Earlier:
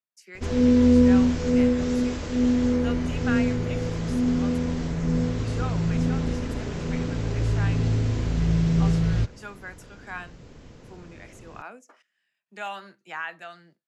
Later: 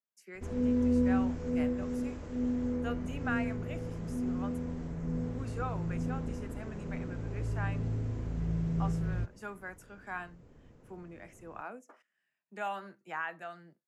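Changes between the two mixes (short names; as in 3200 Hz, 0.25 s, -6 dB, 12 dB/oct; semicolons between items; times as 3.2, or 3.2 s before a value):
background -10.5 dB; master: add bell 4200 Hz -12 dB 2 oct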